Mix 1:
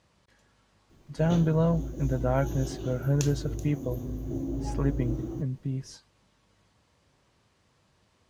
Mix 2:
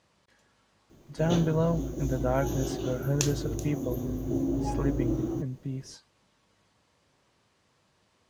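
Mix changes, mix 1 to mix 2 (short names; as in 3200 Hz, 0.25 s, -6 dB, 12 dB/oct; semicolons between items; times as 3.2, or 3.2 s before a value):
background +6.0 dB; master: add low shelf 110 Hz -9.5 dB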